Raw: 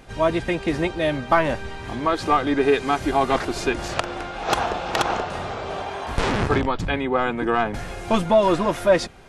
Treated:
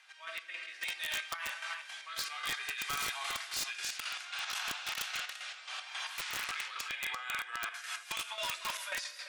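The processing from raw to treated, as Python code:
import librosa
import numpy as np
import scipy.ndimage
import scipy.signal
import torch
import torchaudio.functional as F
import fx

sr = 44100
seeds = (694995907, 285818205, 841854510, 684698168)

y = fx.rattle_buzz(x, sr, strikes_db=-21.0, level_db=-18.0)
y = scipy.signal.sosfilt(scipy.signal.bessel(4, 2100.0, 'highpass', norm='mag', fs=sr, output='sos'), y)
y = fx.room_shoebox(y, sr, seeds[0], volume_m3=550.0, walls='mixed', distance_m=1.0)
y = fx.rotary_switch(y, sr, hz=0.6, then_hz=5.5, switch_at_s=6.63)
y = fx.high_shelf(y, sr, hz=4300.0, db=fx.steps((0.0, -9.0), (0.81, 4.5)))
y = fx.chopper(y, sr, hz=3.7, depth_pct=60, duty_pct=45)
y = fx.high_shelf(y, sr, hz=9700.0, db=-3.0)
y = y + 10.0 ** (-15.5 / 20.0) * np.pad(y, (int(342 * sr / 1000.0), 0))[:len(y)]
y = fx.over_compress(y, sr, threshold_db=-36.0, ratio=-1.0)
y = (np.mod(10.0 ** (26.5 / 20.0) * y + 1.0, 2.0) - 1.0) / 10.0 ** (26.5 / 20.0)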